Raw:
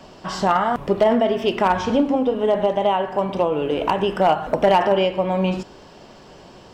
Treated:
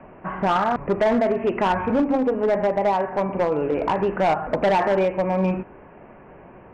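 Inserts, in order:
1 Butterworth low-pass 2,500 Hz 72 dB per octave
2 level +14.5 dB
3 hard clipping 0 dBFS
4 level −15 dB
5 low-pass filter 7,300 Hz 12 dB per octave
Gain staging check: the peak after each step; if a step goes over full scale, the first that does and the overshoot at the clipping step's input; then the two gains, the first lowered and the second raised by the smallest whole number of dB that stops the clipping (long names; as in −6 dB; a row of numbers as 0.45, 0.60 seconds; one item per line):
−6.0, +8.5, 0.0, −15.0, −14.5 dBFS
step 2, 8.5 dB
step 2 +5.5 dB, step 4 −6 dB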